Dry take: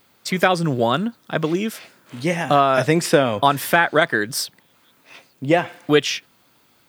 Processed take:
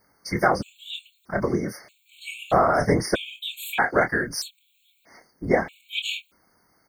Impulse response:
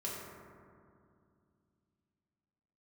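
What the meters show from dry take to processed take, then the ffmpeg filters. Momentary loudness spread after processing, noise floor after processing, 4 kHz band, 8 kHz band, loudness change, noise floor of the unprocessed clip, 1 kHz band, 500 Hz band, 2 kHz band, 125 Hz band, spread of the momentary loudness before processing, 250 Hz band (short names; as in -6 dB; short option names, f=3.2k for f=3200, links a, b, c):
16 LU, -66 dBFS, -5.5 dB, -7.0 dB, -5.0 dB, -59 dBFS, -5.0 dB, -6.0 dB, -5.0 dB, -6.5 dB, 10 LU, -6.5 dB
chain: -filter_complex "[0:a]afftfilt=real='hypot(re,im)*cos(2*PI*random(0))':imag='hypot(re,im)*sin(2*PI*random(1))':win_size=512:overlap=0.75,asplit=2[a][b];[b]adelay=25,volume=-8dB[c];[a][c]amix=inputs=2:normalize=0,afftfilt=real='re*gt(sin(2*PI*0.79*pts/sr)*(1-2*mod(floor(b*sr/1024/2200),2)),0)':imag='im*gt(sin(2*PI*0.79*pts/sr)*(1-2*mod(floor(b*sr/1024/2200),2)),0)':win_size=1024:overlap=0.75,volume=2dB"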